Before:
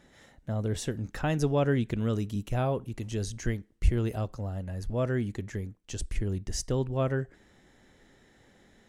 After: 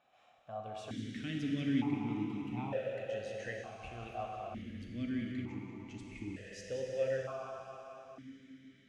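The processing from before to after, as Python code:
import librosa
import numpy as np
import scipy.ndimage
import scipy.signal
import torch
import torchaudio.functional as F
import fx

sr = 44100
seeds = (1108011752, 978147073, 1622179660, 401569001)

p1 = fx.peak_eq(x, sr, hz=390.0, db=-10.5, octaves=1.7)
p2 = p1 + fx.echo_feedback(p1, sr, ms=185, feedback_pct=50, wet_db=-10.0, dry=0)
p3 = fx.rev_plate(p2, sr, seeds[0], rt60_s=4.3, hf_ratio=0.95, predelay_ms=0, drr_db=-1.0)
p4 = fx.vowel_held(p3, sr, hz=1.1)
y = p4 * 10.0 ** (6.5 / 20.0)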